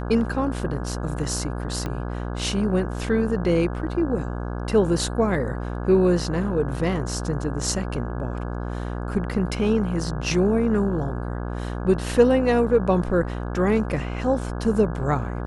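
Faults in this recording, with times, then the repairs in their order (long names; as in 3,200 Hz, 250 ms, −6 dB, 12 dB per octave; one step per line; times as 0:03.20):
mains buzz 60 Hz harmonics 28 −29 dBFS
0:01.86: click −16 dBFS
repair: click removal
hum removal 60 Hz, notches 28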